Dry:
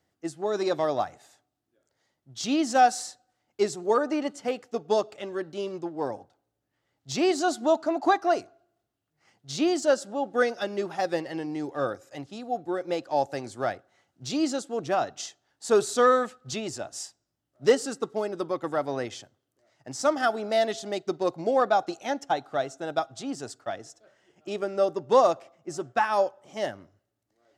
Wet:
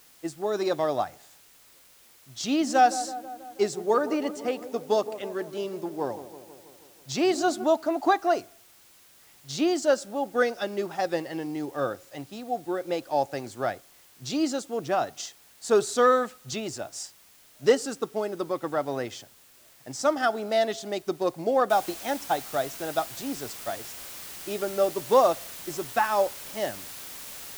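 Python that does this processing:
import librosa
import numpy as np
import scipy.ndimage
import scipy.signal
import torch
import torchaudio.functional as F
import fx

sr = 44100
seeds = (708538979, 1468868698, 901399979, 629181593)

y = fx.echo_wet_lowpass(x, sr, ms=162, feedback_pct=64, hz=1100.0, wet_db=-13.0, at=(2.44, 7.64))
y = fx.noise_floor_step(y, sr, seeds[0], at_s=21.7, before_db=-56, after_db=-41, tilt_db=0.0)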